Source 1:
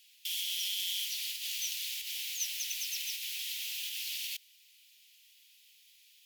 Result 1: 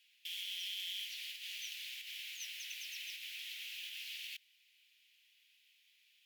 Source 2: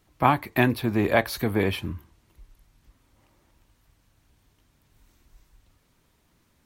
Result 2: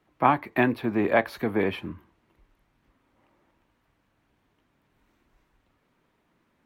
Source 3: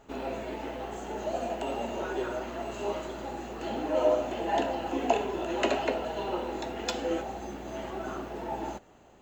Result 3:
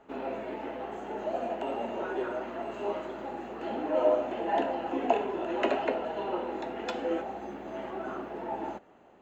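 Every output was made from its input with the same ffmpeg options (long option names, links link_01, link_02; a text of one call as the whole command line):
ffmpeg -i in.wav -filter_complex "[0:a]acrossover=split=160 2900:gain=0.224 1 0.178[link_01][link_02][link_03];[link_01][link_02][link_03]amix=inputs=3:normalize=0" out.wav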